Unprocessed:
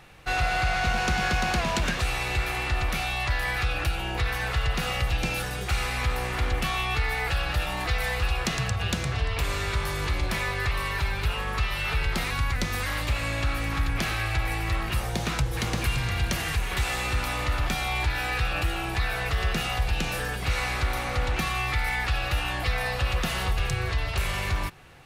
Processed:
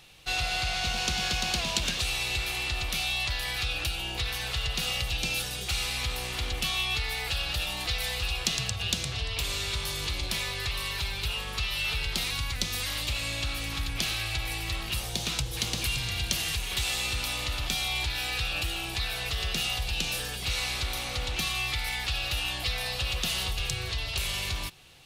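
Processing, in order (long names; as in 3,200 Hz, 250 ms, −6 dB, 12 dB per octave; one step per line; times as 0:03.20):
high shelf with overshoot 2,400 Hz +10 dB, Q 1.5
level −7 dB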